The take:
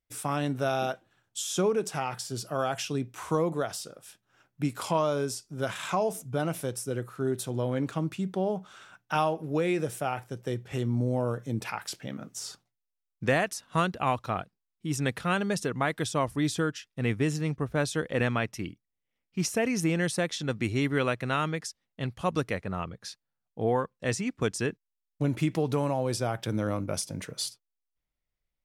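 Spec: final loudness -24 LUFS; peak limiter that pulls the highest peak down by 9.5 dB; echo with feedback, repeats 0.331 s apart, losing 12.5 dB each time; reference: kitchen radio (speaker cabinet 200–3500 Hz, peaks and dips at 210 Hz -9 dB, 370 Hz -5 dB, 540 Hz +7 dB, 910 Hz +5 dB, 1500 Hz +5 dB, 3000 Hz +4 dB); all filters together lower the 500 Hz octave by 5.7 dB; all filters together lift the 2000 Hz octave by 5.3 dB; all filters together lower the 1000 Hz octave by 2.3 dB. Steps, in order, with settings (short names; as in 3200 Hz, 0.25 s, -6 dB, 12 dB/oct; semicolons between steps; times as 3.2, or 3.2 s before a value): bell 500 Hz -8.5 dB; bell 1000 Hz -6.5 dB; bell 2000 Hz +6 dB; limiter -22.5 dBFS; speaker cabinet 200–3500 Hz, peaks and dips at 210 Hz -9 dB, 370 Hz -5 dB, 540 Hz +7 dB, 910 Hz +5 dB, 1500 Hz +5 dB, 3000 Hz +4 dB; feedback echo 0.331 s, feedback 24%, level -12.5 dB; gain +11 dB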